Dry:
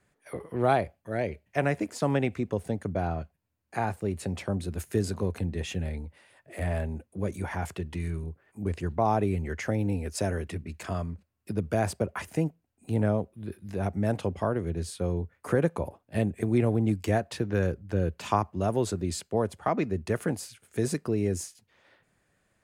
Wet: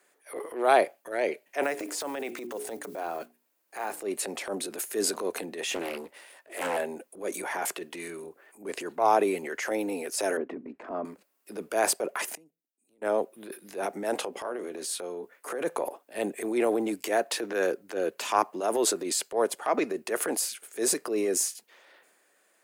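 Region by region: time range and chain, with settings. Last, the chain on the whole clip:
1.63–4.02 block floating point 7-bit + notches 60/120/180/240/300/360/420 Hz + compressor, threshold -30 dBFS
5.69–6.77 sample leveller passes 1 + Doppler distortion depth 0.82 ms
10.37–11.05 LPF 1000 Hz + bell 250 Hz +11 dB 0.43 oct
12.35–13.02 passive tone stack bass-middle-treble 10-0-1 + compressor 12:1, threshold -50 dBFS
14.15–15.61 doubler 16 ms -11.5 dB + compressor 10:1, threshold -30 dBFS
whole clip: HPF 330 Hz 24 dB/oct; transient shaper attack -9 dB, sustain +4 dB; high shelf 8700 Hz +10.5 dB; gain +5 dB

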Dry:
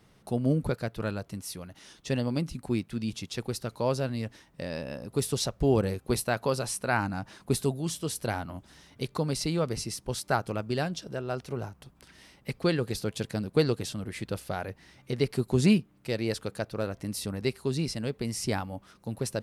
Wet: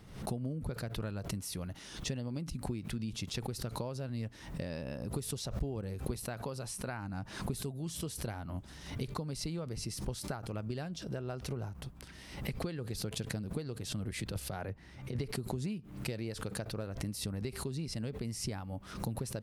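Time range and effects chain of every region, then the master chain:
14.11–15.19 negative-ratio compressor -34 dBFS, ratio -0.5 + three-band expander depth 70%
whole clip: compressor 12:1, threshold -39 dBFS; low shelf 160 Hz +9 dB; backwards sustainer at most 82 dB/s; gain +1 dB

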